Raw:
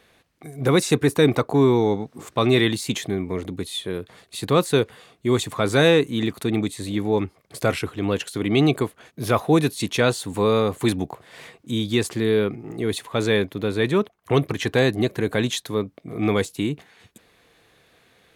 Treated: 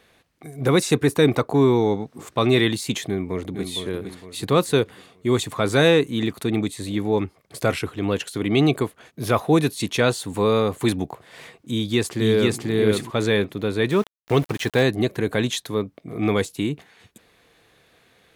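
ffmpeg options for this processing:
ffmpeg -i in.wav -filter_complex "[0:a]asplit=2[link_01][link_02];[link_02]afade=type=in:start_time=3.07:duration=0.01,afade=type=out:start_time=3.68:duration=0.01,aecho=0:1:460|920|1380|1840|2300:0.446684|0.178673|0.0714694|0.0285877|0.0114351[link_03];[link_01][link_03]amix=inputs=2:normalize=0,asplit=2[link_04][link_05];[link_05]afade=type=in:start_time=11.71:duration=0.01,afade=type=out:start_time=12.61:duration=0.01,aecho=0:1:490|980|1470:0.891251|0.133688|0.0200531[link_06];[link_04][link_06]amix=inputs=2:normalize=0,asettb=1/sr,asplit=3[link_07][link_08][link_09];[link_07]atrim=end=13.904[link_10];[link_08]atrim=start=13.9:end=14.83,asetpts=PTS-STARTPTS,afade=type=in:duration=0.004:curve=qsin,afade=type=out:start_time=0.926:duration=0.004:curve=qsin,aeval=exprs='val(0)*gte(abs(val(0)),0.02)':channel_layout=same[link_11];[link_09]atrim=start=14.826[link_12];[link_10][link_11]acrossfade=duration=0.004:curve1=hsin:curve2=qsin[link_13];[link_13][link_12]acrossfade=duration=0.004:curve1=qsin:curve2=hsin" out.wav

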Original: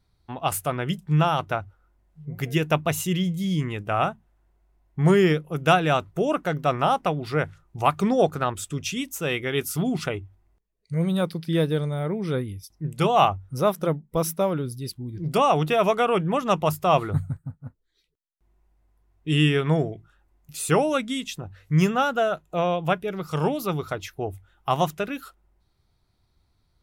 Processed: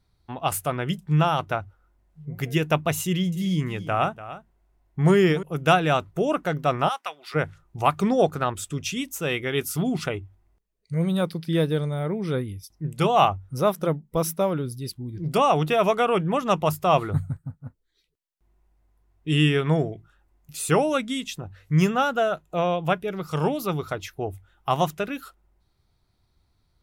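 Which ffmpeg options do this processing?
ffmpeg -i in.wav -filter_complex "[0:a]asettb=1/sr,asplit=3[link_01][link_02][link_03];[link_01]atrim=end=3.034[link_04];[link_02]atrim=start=3.03:end=5.43,asetpts=PTS-STARTPTS,afade=type=in:duration=0.004:curve=qsin,afade=type=out:start_time=2.396:duration=0.004:curve=qsin,aecho=1:1:292:0.188,atrim=end_sample=105840[link_05];[link_03]atrim=start=5.426[link_06];[link_04][link_05]acrossfade=duration=0.004:curve1=hsin:curve2=qsin[link_07];[link_07][link_06]acrossfade=duration=0.004:curve1=qsin:curve2=hsin,asplit=3[link_08][link_09][link_10];[link_08]afade=type=out:start_time=6.88:duration=0.02[link_11];[link_09]highpass=1300,afade=type=in:start_time=6.88:duration=0.02,afade=type=out:start_time=7.34:duration=0.02[link_12];[link_10]afade=type=in:start_time=7.34:duration=0.02[link_13];[link_11][link_12][link_13]amix=inputs=3:normalize=0" out.wav

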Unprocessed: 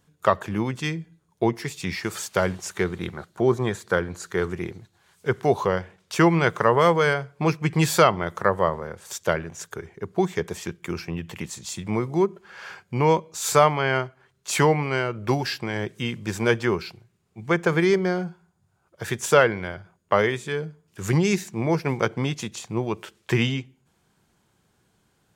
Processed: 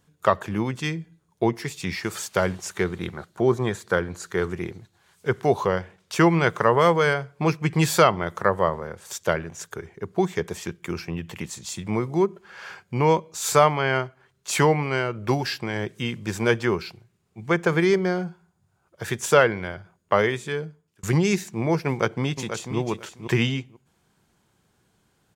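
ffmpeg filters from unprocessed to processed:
ffmpeg -i in.wav -filter_complex "[0:a]asplit=2[link_01][link_02];[link_02]afade=type=in:start_time=21.88:duration=0.01,afade=type=out:start_time=22.78:duration=0.01,aecho=0:1:490|980:0.375837|0.0563756[link_03];[link_01][link_03]amix=inputs=2:normalize=0,asplit=2[link_04][link_05];[link_04]atrim=end=21.03,asetpts=PTS-STARTPTS,afade=type=out:start_time=20.42:duration=0.61:curve=qsin[link_06];[link_05]atrim=start=21.03,asetpts=PTS-STARTPTS,afade=type=in:duration=0.004:curve=hsin[link_07];[link_06][link_07]concat=n=2:v=0:a=1" out.wav

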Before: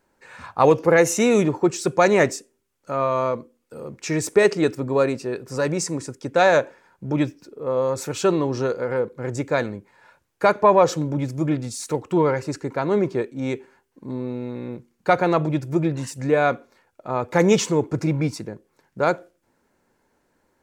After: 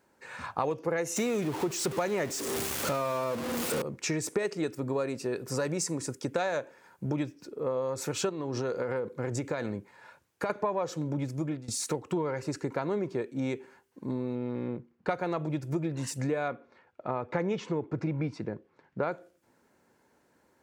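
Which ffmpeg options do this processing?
ffmpeg -i in.wav -filter_complex "[0:a]asettb=1/sr,asplit=3[link_01][link_02][link_03];[link_01]atrim=end=1.164[link_04];[link_02]atrim=start=1.16:end=3.82,asetpts=PTS-STARTPTS,afade=type=in:duration=0.004:curve=qsin,afade=type=out:start_time=2.656:duration=0.004:curve=qsin,aeval=exprs='val(0)+0.5*0.0708*sgn(val(0))':channel_layout=same[link_05];[link_03]atrim=start=3.816[link_06];[link_04][link_05]acrossfade=duration=0.004:curve1=hsin:curve2=qsin[link_07];[link_07][link_06]acrossfade=duration=0.004:curve1=qsin:curve2=hsin,asettb=1/sr,asplit=3[link_08][link_09][link_10];[link_08]atrim=end=4.454[link_11];[link_09]atrim=start=4.45:end=7.23,asetpts=PTS-STARTPTS,afade=type=in:duration=0.004:curve=qsin,afade=type=out:start_time=2.776:duration=0.004:curve=qsin,highshelf=frequency=8900:gain=8[link_12];[link_10]atrim=start=7.226[link_13];[link_11][link_12]acrossfade=duration=0.004:curve1=hsin:curve2=qsin[link_14];[link_14][link_13]acrossfade=duration=0.004:curve1=qsin:curve2=hsin,asettb=1/sr,asplit=3[link_15][link_16][link_17];[link_15]atrim=end=8.294[link_18];[link_16]atrim=start=8.29:end=10.5,asetpts=PTS-STARTPTS,afade=type=in:duration=0.004:curve=qsin,afade=type=out:start_time=2.206:duration=0.004:curve=qsin,acompressor=threshold=-23dB:ratio=6:attack=3.2:release=140:knee=1:detection=peak[link_19];[link_17]atrim=start=10.496[link_20];[link_18][link_19]acrossfade=duration=0.004:curve1=hsin:curve2=qsin[link_21];[link_21][link_20]acrossfade=duration=0.004:curve1=qsin:curve2=hsin,asettb=1/sr,asplit=3[link_22][link_23][link_24];[link_22]atrim=end=14.354[link_25];[link_23]atrim=start=14.35:end=15.09,asetpts=PTS-STARTPTS,afade=type=in:duration=0.004:curve=qsin,afade=type=out:start_time=0.736:duration=0.004:curve=qsin,adynamicsmooth=sensitivity=5.5:basefreq=2300[link_26];[link_24]atrim=start=15.086[link_27];[link_25][link_26]acrossfade=duration=0.004:curve1=hsin:curve2=qsin[link_28];[link_28][link_27]acrossfade=duration=0.004:curve1=qsin:curve2=hsin,asettb=1/sr,asplit=3[link_29][link_30][link_31];[link_29]atrim=end=16.484[link_32];[link_30]atrim=start=16.48:end=19.12,asetpts=PTS-STARTPTS,afade=type=in:duration=0.004:curve=qsin,afade=type=out:start_time=2.636:duration=0.004:curve=qsin,lowpass=3000[link_33];[link_31]atrim=start=19.116[link_34];[link_32][link_33]acrossfade=duration=0.004:curve1=hsin:curve2=qsin[link_35];[link_35][link_34]acrossfade=duration=0.004:curve1=qsin:curve2=hsin,asplit=2[link_36][link_37];[link_36]atrim=end=11.68,asetpts=PTS-STARTPTS,afade=type=out:start_time=11.23:duration=0.45:silence=0.1[link_38];[link_37]atrim=start=11.68,asetpts=PTS-STARTPTS,afade=type=in:duration=0.004:curve=hsin:silence=0.1[link_39];[link_38][link_39]concat=n=2:v=0:a=1,highpass=75,acompressor=threshold=-28dB:ratio=6" out.wav

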